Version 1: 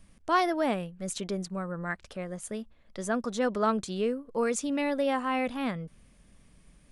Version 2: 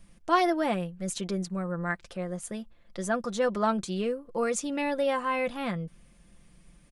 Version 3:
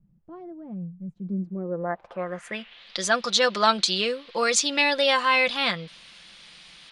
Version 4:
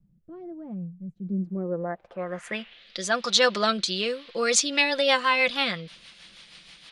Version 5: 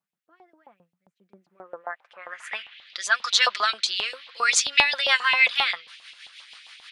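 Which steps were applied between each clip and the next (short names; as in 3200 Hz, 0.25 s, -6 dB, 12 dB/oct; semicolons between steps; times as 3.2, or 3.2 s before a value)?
comb 5.8 ms, depth 50%
band noise 400–3500 Hz -66 dBFS; tilt +4 dB/oct; low-pass sweep 150 Hz -> 4300 Hz, 1.18–2.88; gain +6.5 dB
rotary speaker horn 1.1 Hz, later 6.3 Hz, at 4.03; gain +1.5 dB
LFO high-pass saw up 7.5 Hz 810–3000 Hz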